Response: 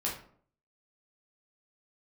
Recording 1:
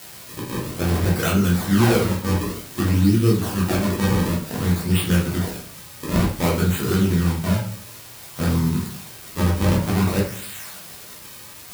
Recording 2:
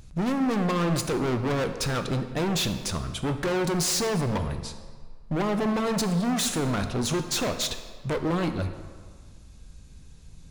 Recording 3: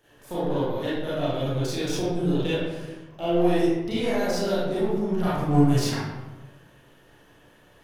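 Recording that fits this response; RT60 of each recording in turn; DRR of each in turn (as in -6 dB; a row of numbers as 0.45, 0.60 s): 1; 0.55, 1.7, 1.2 s; -4.5, 7.5, -10.0 dB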